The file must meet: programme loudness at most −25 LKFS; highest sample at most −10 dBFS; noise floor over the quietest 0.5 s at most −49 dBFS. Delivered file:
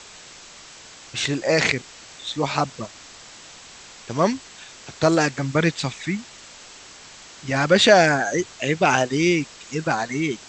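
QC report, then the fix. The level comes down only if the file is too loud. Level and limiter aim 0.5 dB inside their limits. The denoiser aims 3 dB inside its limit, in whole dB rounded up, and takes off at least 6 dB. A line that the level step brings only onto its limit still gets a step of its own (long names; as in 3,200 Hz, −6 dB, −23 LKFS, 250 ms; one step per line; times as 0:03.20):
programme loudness −21.0 LKFS: out of spec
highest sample −2.5 dBFS: out of spec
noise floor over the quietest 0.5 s −44 dBFS: out of spec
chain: broadband denoise 6 dB, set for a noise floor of −44 dBFS
level −4.5 dB
brickwall limiter −10.5 dBFS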